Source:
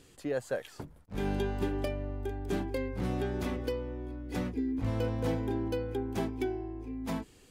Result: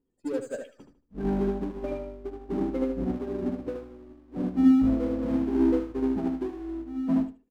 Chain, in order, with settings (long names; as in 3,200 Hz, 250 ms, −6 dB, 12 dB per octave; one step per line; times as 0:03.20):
graphic EQ with 15 bands 100 Hz −11 dB, 250 Hz +7 dB, 4,000 Hz −5 dB
gate on every frequency bin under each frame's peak −15 dB strong
power curve on the samples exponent 0.7
on a send: repeating echo 76 ms, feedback 46%, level −3 dB
on the sum: expander for the loud parts 2.5 to 1, over −44 dBFS
level +5.5 dB